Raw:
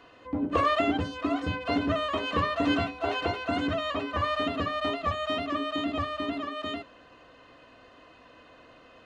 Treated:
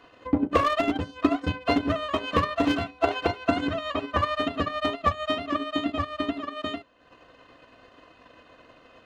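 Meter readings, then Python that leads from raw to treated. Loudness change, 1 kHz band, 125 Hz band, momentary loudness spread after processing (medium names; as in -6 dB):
+2.0 dB, +2.0 dB, +2.0 dB, 6 LU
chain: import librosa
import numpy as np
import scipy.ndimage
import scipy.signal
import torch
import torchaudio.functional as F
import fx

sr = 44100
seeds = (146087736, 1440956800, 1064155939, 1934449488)

y = np.clip(10.0 ** (20.0 / 20.0) * x, -1.0, 1.0) / 10.0 ** (20.0 / 20.0)
y = fx.transient(y, sr, attack_db=10, sustain_db=-9)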